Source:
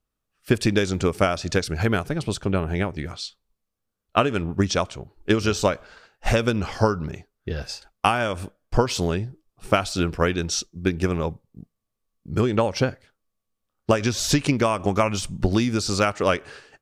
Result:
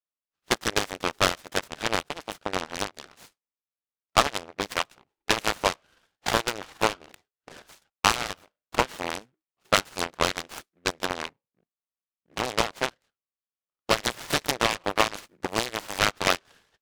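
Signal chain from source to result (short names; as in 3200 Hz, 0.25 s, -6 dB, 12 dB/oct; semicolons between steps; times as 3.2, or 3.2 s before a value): added harmonics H 3 -23 dB, 5 -37 dB, 7 -17 dB, 8 -24 dB, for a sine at -4 dBFS; band-pass 2100 Hz, Q 0.58; noise-modulated delay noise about 1400 Hz, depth 0.1 ms; gain +4 dB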